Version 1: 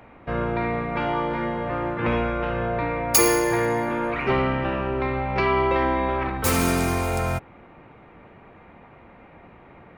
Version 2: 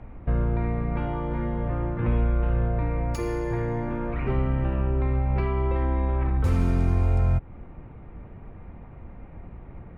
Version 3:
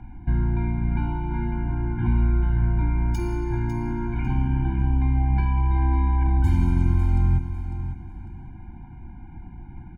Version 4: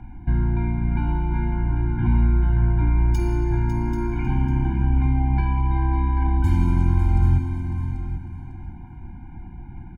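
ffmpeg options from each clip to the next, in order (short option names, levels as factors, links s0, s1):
-af "lowshelf=f=74:g=7,acompressor=threshold=0.0355:ratio=2,aemphasis=mode=reproduction:type=riaa,volume=0.562"
-filter_complex "[0:a]asplit=2[s0][s1];[s1]aecho=0:1:550|1100|1650:0.316|0.0885|0.0248[s2];[s0][s2]amix=inputs=2:normalize=0,afftfilt=real='re*eq(mod(floor(b*sr/1024/350),2),0)':imag='im*eq(mod(floor(b*sr/1024/350),2),0)':win_size=1024:overlap=0.75,volume=1.26"
-af "aecho=1:1:787:0.316,volume=1.19"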